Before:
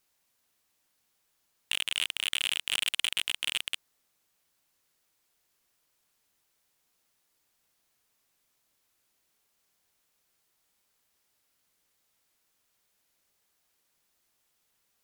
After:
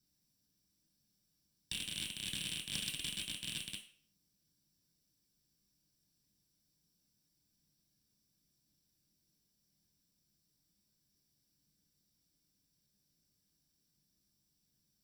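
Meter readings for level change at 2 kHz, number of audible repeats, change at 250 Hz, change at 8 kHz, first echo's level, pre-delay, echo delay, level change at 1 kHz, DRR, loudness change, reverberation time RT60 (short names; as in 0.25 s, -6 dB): -13.5 dB, none, +6.5 dB, -6.5 dB, none, 3 ms, none, -16.5 dB, -1.5 dB, -10.0 dB, 0.50 s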